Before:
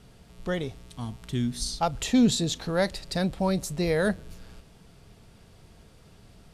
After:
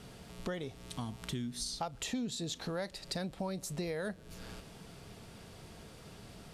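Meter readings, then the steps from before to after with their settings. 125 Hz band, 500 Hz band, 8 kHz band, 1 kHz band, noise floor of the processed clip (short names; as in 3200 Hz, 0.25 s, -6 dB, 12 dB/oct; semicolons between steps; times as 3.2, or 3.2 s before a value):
-11.0 dB, -11.5 dB, -8.0 dB, -11.0 dB, -54 dBFS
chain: low shelf 83 Hz -11 dB; compressor 6:1, threshold -41 dBFS, peak gain reduction 21.5 dB; gain +4.5 dB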